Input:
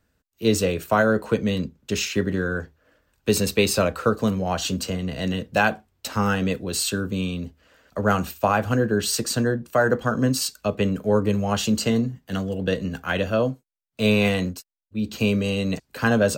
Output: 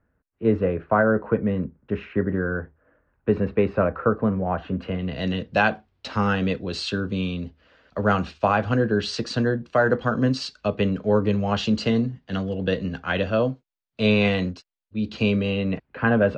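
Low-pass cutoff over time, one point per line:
low-pass 24 dB/octave
4.68 s 1.8 kHz
5.23 s 4.6 kHz
15.25 s 4.6 kHz
15.83 s 2.5 kHz

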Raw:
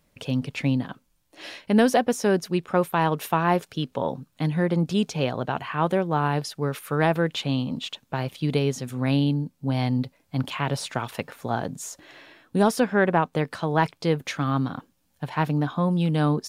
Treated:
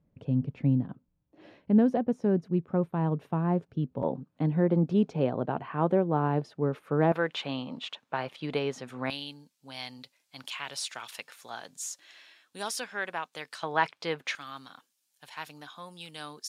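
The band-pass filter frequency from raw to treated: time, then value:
band-pass filter, Q 0.6
130 Hz
from 4.03 s 320 Hz
from 7.12 s 1.2 kHz
from 9.10 s 6 kHz
from 13.63 s 2 kHz
from 14.35 s 7.8 kHz

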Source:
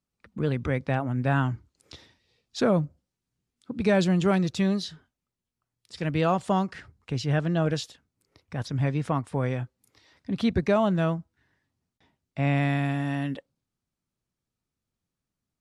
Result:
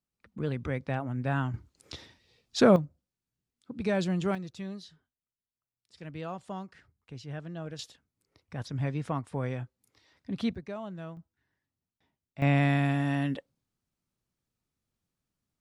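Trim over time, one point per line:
-5.5 dB
from 1.54 s +3 dB
from 2.76 s -6.5 dB
from 4.35 s -14.5 dB
from 7.79 s -5.5 dB
from 10.55 s -16.5 dB
from 11.17 s -10 dB
from 12.42 s 0 dB

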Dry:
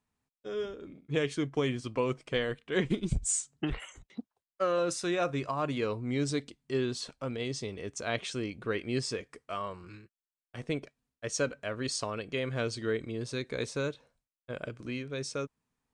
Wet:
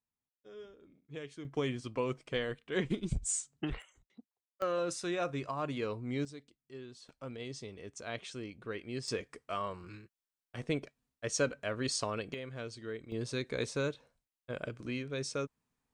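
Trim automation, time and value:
-14.5 dB
from 1.45 s -4 dB
from 3.82 s -15 dB
from 4.62 s -4.5 dB
from 6.25 s -17 dB
from 7.09 s -8 dB
from 9.08 s -0.5 dB
from 12.34 s -10 dB
from 13.12 s -1 dB

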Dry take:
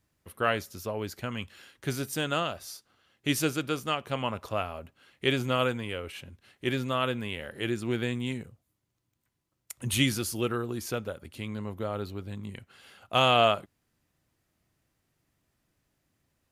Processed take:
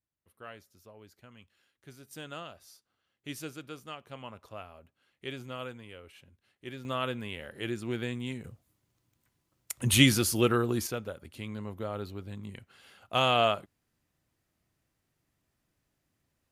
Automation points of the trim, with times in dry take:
-19.5 dB
from 2.11 s -13 dB
from 6.85 s -4 dB
from 8.44 s +4.5 dB
from 10.87 s -3 dB

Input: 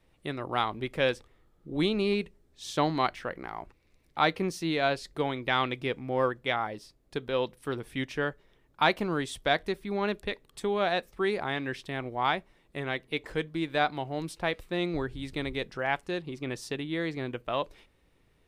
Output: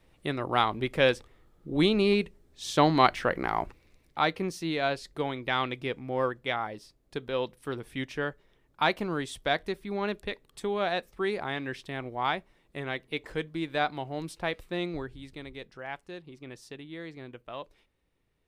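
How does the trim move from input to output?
2.68 s +3.5 dB
3.59 s +10.5 dB
4.25 s -1.5 dB
14.77 s -1.5 dB
15.40 s -9.5 dB

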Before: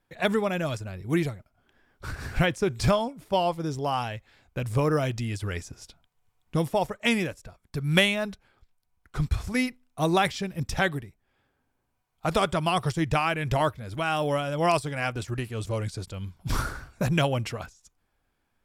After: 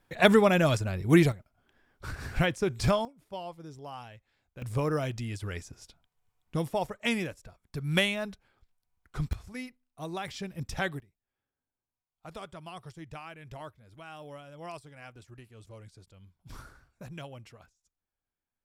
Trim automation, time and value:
+5 dB
from 1.32 s -3 dB
from 3.05 s -15 dB
from 4.62 s -5 dB
from 9.33 s -14 dB
from 10.28 s -6.5 dB
from 11.00 s -19 dB

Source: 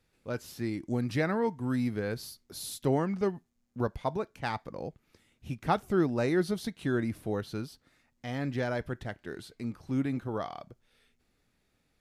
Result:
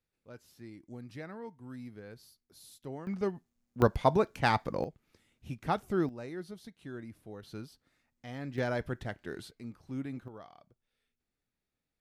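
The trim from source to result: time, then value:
-15 dB
from 3.07 s -3 dB
from 3.82 s +6.5 dB
from 4.84 s -3.5 dB
from 6.09 s -14 dB
from 7.43 s -7 dB
from 8.58 s -0.5 dB
from 9.51 s -8 dB
from 10.28 s -15 dB

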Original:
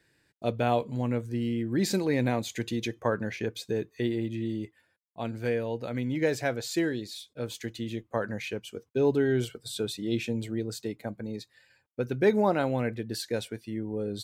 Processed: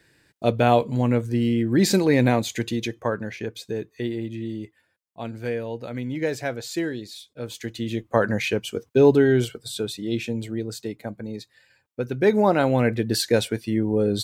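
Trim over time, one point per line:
2.31 s +8 dB
3.27 s +1 dB
7.40 s +1 dB
8.23 s +10.5 dB
8.88 s +10.5 dB
9.89 s +3 dB
12.15 s +3 dB
13.07 s +11 dB

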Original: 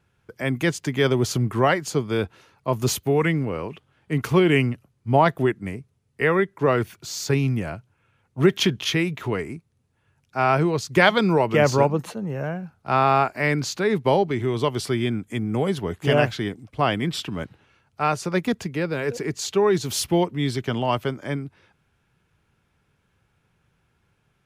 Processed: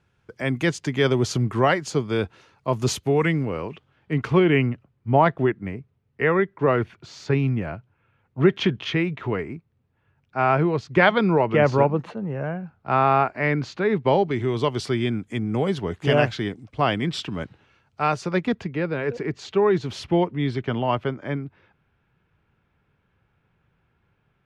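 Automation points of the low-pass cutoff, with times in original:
3.46 s 7.2 kHz
4.54 s 2.7 kHz
13.92 s 2.7 kHz
14.41 s 6.3 kHz
18.04 s 6.3 kHz
18.70 s 2.8 kHz

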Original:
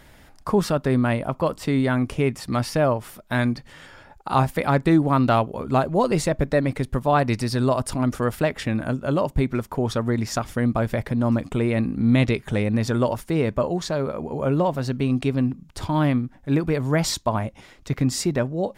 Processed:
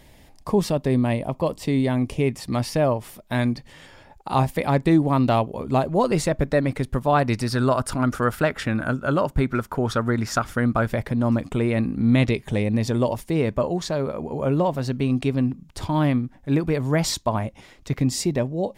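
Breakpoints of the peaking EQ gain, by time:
peaking EQ 1.4 kHz 0.46 oct
-14.5 dB
from 2.28 s -8 dB
from 5.87 s 0 dB
from 7.47 s +9 dB
from 10.88 s -0.5 dB
from 12.30 s -9.5 dB
from 13.35 s -3 dB
from 18.00 s -11.5 dB

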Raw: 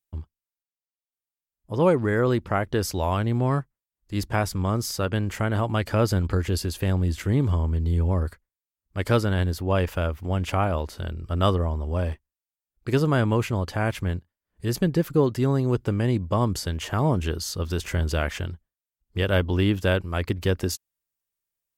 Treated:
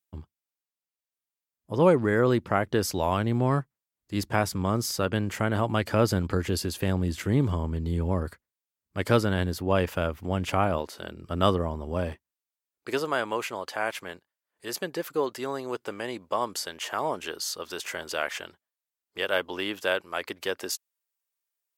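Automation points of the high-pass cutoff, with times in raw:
10.75 s 120 Hz
10.92 s 370 Hz
11.34 s 130 Hz
12.08 s 130 Hz
13.09 s 550 Hz

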